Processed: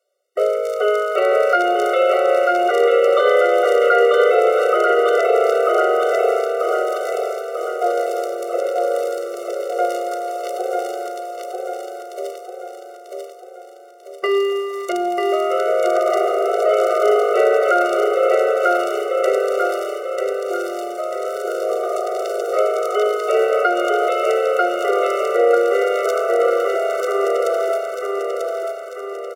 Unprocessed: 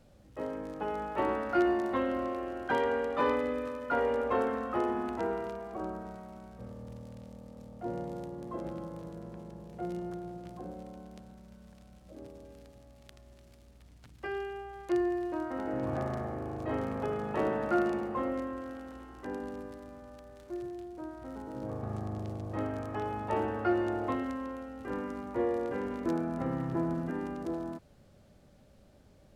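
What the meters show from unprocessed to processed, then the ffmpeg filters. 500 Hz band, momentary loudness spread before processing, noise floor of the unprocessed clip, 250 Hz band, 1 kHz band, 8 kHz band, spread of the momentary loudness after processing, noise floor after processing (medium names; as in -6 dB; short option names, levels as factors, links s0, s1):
+19.5 dB, 18 LU, -59 dBFS, +4.0 dB, +16.5 dB, no reading, 12 LU, -37 dBFS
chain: -filter_complex "[0:a]bandreject=f=3400:w=19,agate=range=0.0251:threshold=0.00447:ratio=16:detection=peak,highpass=310,highshelf=f=4700:g=6.5,asplit=2[s0][s1];[s1]acompressor=threshold=0.00562:ratio=6,volume=1.26[s2];[s0][s2]amix=inputs=2:normalize=0,aecho=1:1:942|1884|2826|3768|4710|5652|6594:0.668|0.334|0.167|0.0835|0.0418|0.0209|0.0104,alimiter=level_in=11.9:limit=0.891:release=50:level=0:latency=1,afftfilt=real='re*eq(mod(floor(b*sr/1024/380),2),1)':imag='im*eq(mod(floor(b*sr/1024/380),2),1)':win_size=1024:overlap=0.75,volume=0.708"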